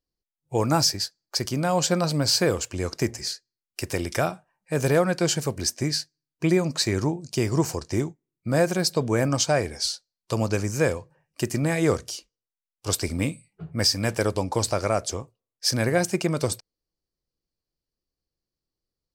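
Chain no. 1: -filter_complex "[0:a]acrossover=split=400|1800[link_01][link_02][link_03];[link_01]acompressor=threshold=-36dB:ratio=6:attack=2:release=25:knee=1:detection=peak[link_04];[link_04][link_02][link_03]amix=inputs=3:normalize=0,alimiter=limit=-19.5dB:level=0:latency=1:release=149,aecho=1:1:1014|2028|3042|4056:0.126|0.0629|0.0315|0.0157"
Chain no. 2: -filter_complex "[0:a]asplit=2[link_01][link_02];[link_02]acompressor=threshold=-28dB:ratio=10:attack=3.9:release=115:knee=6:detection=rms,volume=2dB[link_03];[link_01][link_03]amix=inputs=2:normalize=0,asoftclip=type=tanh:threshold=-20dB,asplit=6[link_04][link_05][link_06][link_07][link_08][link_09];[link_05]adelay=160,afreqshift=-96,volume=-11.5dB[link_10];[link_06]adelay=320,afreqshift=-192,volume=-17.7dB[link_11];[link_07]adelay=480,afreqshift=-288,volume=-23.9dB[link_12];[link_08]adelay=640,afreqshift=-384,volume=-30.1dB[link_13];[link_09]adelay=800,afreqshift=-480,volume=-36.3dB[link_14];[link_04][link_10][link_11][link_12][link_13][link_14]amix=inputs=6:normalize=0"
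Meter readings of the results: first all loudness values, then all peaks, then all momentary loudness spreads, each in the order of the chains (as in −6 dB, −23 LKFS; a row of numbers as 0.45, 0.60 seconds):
−32.0, −26.5 LKFS; −18.5, −16.0 dBFS; 14, 9 LU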